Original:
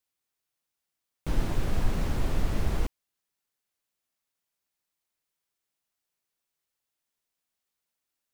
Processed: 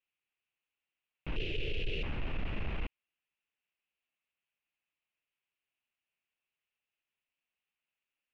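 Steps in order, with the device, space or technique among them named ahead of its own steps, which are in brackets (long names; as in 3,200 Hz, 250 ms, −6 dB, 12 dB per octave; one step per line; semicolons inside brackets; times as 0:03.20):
overdriven synthesiser ladder filter (soft clipping −20 dBFS, distortion −14 dB; transistor ladder low-pass 2,900 Hz, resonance 70%)
0:01.36–0:02.03: drawn EQ curve 130 Hz 0 dB, 230 Hz −9 dB, 440 Hz +12 dB, 960 Hz −27 dB, 2,900 Hz +10 dB
level +4.5 dB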